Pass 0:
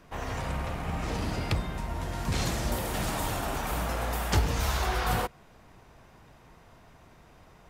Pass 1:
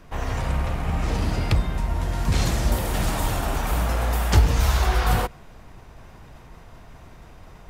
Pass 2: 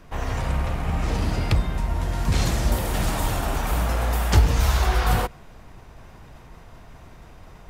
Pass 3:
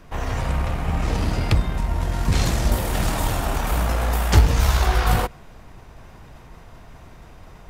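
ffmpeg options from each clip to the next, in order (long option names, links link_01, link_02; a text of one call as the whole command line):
ffmpeg -i in.wav -af "lowshelf=frequency=78:gain=10,areverse,acompressor=mode=upward:threshold=-42dB:ratio=2.5,areverse,volume=4dB" out.wav
ffmpeg -i in.wav -af anull out.wav
ffmpeg -i in.wav -af "aeval=exprs='0.531*(cos(1*acos(clip(val(0)/0.531,-1,1)))-cos(1*PI/2))+0.0299*(cos(3*acos(clip(val(0)/0.531,-1,1)))-cos(3*PI/2))+0.0119*(cos(4*acos(clip(val(0)/0.531,-1,1)))-cos(4*PI/2))+0.0237*(cos(6*acos(clip(val(0)/0.531,-1,1)))-cos(6*PI/2))':channel_layout=same,volume=3dB" out.wav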